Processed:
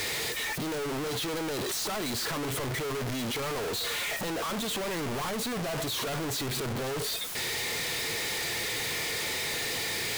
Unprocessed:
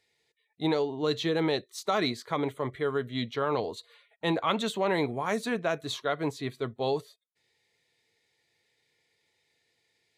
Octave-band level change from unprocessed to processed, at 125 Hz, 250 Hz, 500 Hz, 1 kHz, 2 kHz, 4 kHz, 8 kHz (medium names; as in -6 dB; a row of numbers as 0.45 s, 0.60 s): +1.0 dB, -3.0 dB, -4.0 dB, -2.5 dB, +5.0 dB, +6.5 dB, +15.0 dB